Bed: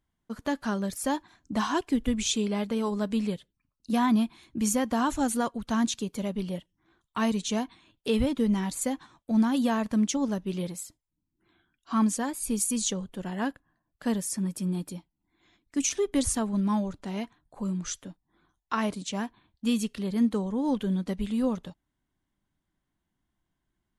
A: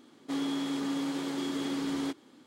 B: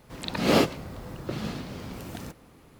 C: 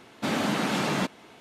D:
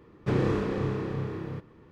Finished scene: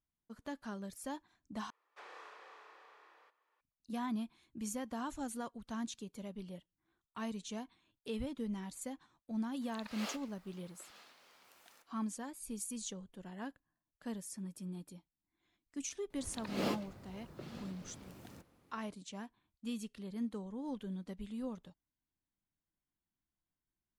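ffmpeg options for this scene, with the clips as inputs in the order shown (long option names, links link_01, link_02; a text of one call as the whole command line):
ffmpeg -i bed.wav -i cue0.wav -i cue1.wav -i cue2.wav -i cue3.wav -filter_complex "[2:a]asplit=2[link_01][link_02];[0:a]volume=-14.5dB[link_03];[4:a]highpass=frequency=720:width=0.5412,highpass=frequency=720:width=1.3066[link_04];[link_01]highpass=940[link_05];[link_02]afreqshift=16[link_06];[link_03]asplit=2[link_07][link_08];[link_07]atrim=end=1.704[link_09];[link_04]atrim=end=1.91,asetpts=PTS-STARTPTS,volume=-15dB[link_10];[link_08]atrim=start=3.606[link_11];[link_05]atrim=end=2.79,asetpts=PTS-STARTPTS,volume=-17dB,afade=type=in:duration=0.004:curve=hsin,afade=type=out:start_time=2.786:duration=0.004:curve=hsin,adelay=9510[link_12];[link_06]atrim=end=2.79,asetpts=PTS-STARTPTS,volume=-15.5dB,afade=type=in:duration=0.004:curve=hsin,afade=type=out:start_time=2.786:duration=0.004:curve=hsin,adelay=16100[link_13];[link_09][link_10]acrossfade=duration=0.004:curve1=hsin:curve2=hsin[link_14];[link_14][link_11]acrossfade=duration=0.004:curve1=hsin:curve2=hsin[link_15];[link_15][link_12][link_13]amix=inputs=3:normalize=0" out.wav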